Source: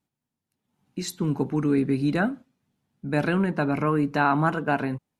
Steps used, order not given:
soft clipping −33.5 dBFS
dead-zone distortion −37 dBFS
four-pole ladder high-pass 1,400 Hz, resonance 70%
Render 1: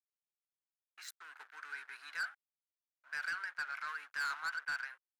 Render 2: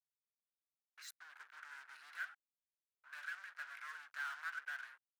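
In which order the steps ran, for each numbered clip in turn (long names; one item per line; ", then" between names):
dead-zone distortion, then four-pole ladder high-pass, then soft clipping
dead-zone distortion, then soft clipping, then four-pole ladder high-pass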